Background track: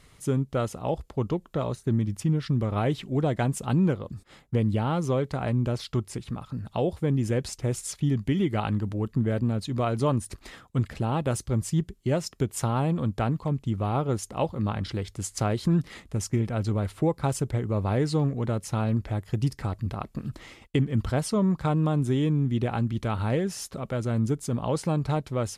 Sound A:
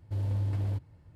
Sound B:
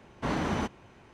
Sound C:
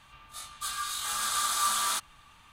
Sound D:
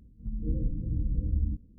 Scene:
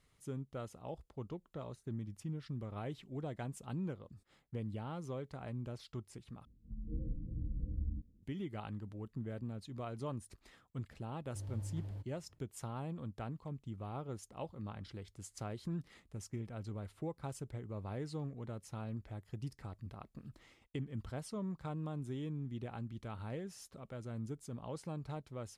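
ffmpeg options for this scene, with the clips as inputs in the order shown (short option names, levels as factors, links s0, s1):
-filter_complex "[0:a]volume=0.141,asplit=2[s0][s1];[s0]atrim=end=6.454[s2];[4:a]atrim=end=1.78,asetpts=PTS-STARTPTS,volume=0.299[s3];[s1]atrim=start=8.226[s4];[1:a]atrim=end=1.15,asetpts=PTS-STARTPTS,volume=0.211,afade=t=in:d=0.004:c=hsin,afade=t=out:st=1.146:d=0.004:c=hsin,adelay=11240[s5];[s2][s3]acrossfade=d=0.004:c1=hsin:c2=hsin[s6];[s6][s4]acrossfade=d=0.004:c1=hsin:c2=hsin[s7];[s7][s5]amix=inputs=2:normalize=0"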